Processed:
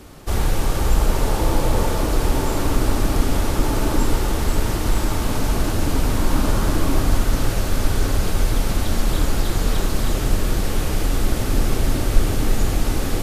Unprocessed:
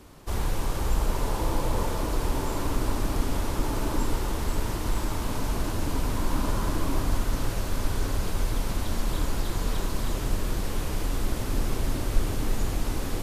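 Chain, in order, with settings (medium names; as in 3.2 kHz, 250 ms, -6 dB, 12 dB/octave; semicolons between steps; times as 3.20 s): band-stop 1 kHz, Q 10; trim +8 dB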